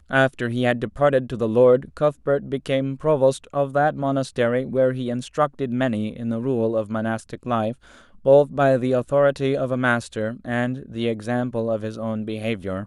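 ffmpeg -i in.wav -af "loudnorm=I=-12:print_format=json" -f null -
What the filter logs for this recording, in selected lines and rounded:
"input_i" : "-22.6",
"input_tp" : "-4.5",
"input_lra" : "5.5",
"input_thresh" : "-32.7",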